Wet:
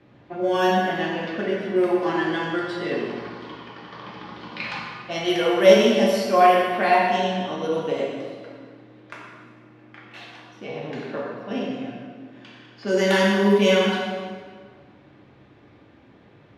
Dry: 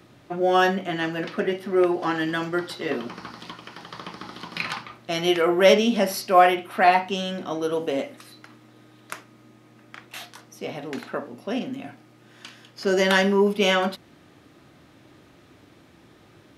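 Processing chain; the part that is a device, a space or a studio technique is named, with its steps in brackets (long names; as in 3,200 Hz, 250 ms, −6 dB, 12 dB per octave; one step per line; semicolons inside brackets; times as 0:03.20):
low-pass that shuts in the quiet parts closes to 2,800 Hz, open at −15 dBFS
stairwell (convolution reverb RT60 1.8 s, pre-delay 3 ms, DRR −4 dB)
notch filter 1,300 Hz, Q 13
level −4.5 dB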